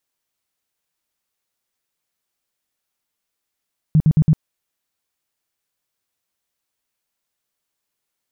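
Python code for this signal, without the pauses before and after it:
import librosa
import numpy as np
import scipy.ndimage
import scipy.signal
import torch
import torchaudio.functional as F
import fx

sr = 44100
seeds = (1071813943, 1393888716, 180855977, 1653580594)

y = fx.tone_burst(sr, hz=155.0, cycles=8, every_s=0.11, bursts=4, level_db=-9.0)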